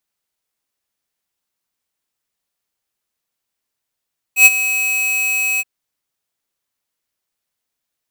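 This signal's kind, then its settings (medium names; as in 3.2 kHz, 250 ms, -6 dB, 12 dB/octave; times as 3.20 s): ADSR square 2.55 kHz, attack 98 ms, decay 33 ms, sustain -13.5 dB, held 1.24 s, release 34 ms -4.5 dBFS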